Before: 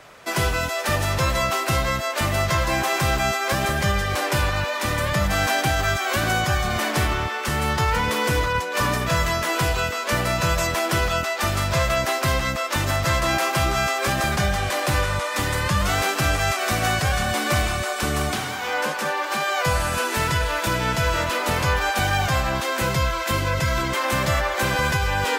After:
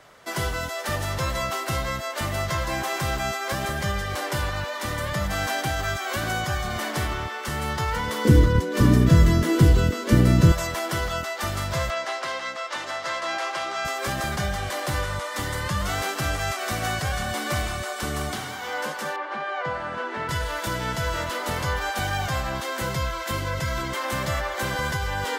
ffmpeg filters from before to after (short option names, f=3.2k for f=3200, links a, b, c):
-filter_complex "[0:a]asettb=1/sr,asplit=3[a][b][c];[a]atrim=end=8.254[d];[b]atrim=start=8.25:end=10.52,asetpts=PTS-STARTPTS,afade=t=in:d=0.004:c=qsin,afade=t=out:st=2.266:d=0.004:c=qsin,lowshelf=f=480:t=q:w=1.5:g=14[e];[c]atrim=start=10.516[f];[d][e]acrossfade=d=0.004:c1=hsin:c2=qsin[g];[g][f]acrossfade=d=0.004:c1=qsin:c2=hsin,asettb=1/sr,asplit=3[h][i][j];[h]atrim=end=11.904[k];[i]atrim=start=11.9:end=13.85,asetpts=PTS-STARTPTS,afade=t=in:d=0.004:c=qsin,afade=t=out:st=1.946:d=0.004:c=qsin,highpass=480,lowpass=5.7k[l];[j]atrim=start=13.846[m];[k][l]acrossfade=d=0.004:c1=hsin:c2=qsin[n];[n][m]acrossfade=d=0.004:c1=qsin:c2=hsin,asettb=1/sr,asplit=3[o][p][q];[o]atrim=end=19.164[r];[p]atrim=start=19.16:end=20.29,asetpts=PTS-STARTPTS,afade=t=in:d=0.004:c=qsin,afade=t=out:st=1.126:d=0.004:c=qsin,highpass=180,lowpass=2.2k[s];[q]atrim=start=20.286[t];[r][s]acrossfade=d=0.004:c1=hsin:c2=qsin[u];[u][t]acrossfade=d=0.004:c1=qsin:c2=hsin,bandreject=f=2.5k:w=9.9,volume=-5dB"